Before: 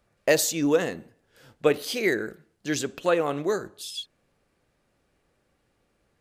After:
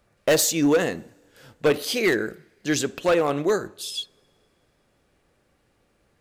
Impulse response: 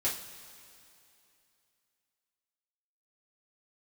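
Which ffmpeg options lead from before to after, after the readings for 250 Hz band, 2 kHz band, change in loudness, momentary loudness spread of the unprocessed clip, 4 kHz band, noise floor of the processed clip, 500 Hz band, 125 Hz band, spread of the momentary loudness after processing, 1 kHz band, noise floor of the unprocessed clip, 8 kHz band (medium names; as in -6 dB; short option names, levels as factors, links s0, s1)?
+4.0 dB, +2.5 dB, +2.5 dB, 15 LU, +4.0 dB, -67 dBFS, +2.5 dB, +4.0 dB, 13 LU, +3.0 dB, -72 dBFS, +4.0 dB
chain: -filter_complex "[0:a]asoftclip=type=hard:threshold=0.119,asplit=2[s0][s1];[1:a]atrim=start_sample=2205[s2];[s1][s2]afir=irnorm=-1:irlink=0,volume=0.0376[s3];[s0][s3]amix=inputs=2:normalize=0,volume=1.58"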